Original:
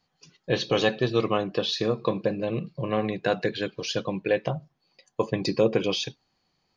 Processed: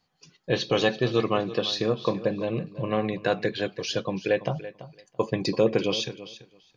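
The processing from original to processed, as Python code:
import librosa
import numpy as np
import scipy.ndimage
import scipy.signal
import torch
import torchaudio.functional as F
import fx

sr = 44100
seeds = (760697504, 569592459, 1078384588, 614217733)

y = fx.echo_feedback(x, sr, ms=335, feedback_pct=15, wet_db=-15.0)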